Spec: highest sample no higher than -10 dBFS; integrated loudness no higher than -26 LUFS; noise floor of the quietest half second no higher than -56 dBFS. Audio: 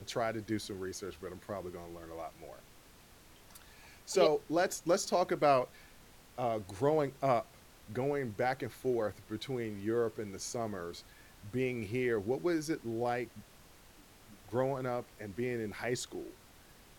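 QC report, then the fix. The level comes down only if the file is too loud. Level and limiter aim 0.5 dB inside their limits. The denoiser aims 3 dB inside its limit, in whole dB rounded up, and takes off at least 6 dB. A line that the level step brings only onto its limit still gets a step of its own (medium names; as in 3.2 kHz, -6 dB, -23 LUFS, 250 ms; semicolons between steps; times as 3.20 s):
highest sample -14.0 dBFS: pass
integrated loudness -35.0 LUFS: pass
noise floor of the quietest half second -59 dBFS: pass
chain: none needed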